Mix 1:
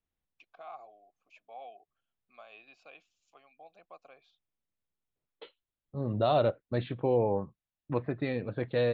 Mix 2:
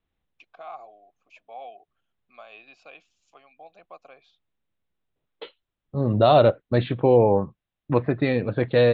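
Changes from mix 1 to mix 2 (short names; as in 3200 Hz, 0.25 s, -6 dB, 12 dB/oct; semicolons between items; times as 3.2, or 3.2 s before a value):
first voice +6.5 dB; second voice +10.0 dB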